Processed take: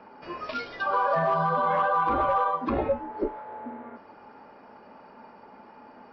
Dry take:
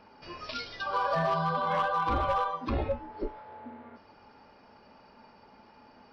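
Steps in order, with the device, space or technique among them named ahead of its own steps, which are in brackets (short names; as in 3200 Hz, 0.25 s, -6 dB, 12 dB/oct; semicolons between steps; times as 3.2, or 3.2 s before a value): DJ mixer with the lows and highs turned down (three-band isolator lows -12 dB, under 170 Hz, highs -14 dB, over 2200 Hz; limiter -24 dBFS, peak gain reduction 5 dB); gain +7.5 dB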